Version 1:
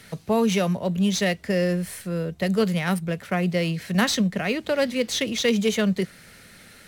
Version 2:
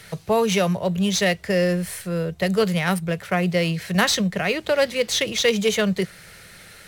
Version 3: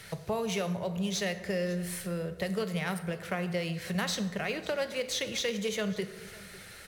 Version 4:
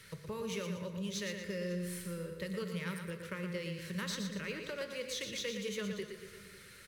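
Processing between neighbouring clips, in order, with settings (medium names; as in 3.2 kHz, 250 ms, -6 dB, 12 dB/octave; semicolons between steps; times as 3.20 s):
peaking EQ 250 Hz -13 dB 0.45 oct; trim +4 dB
compression 2.5:1, threshold -29 dBFS, peak gain reduction 10.5 dB; delay 550 ms -20.5 dB; plate-style reverb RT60 1.2 s, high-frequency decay 0.6×, DRR 9.5 dB; trim -4 dB
Butterworth band-stop 730 Hz, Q 2.1; on a send: feedback delay 118 ms, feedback 43%, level -7 dB; on the sum: trim -7.5 dB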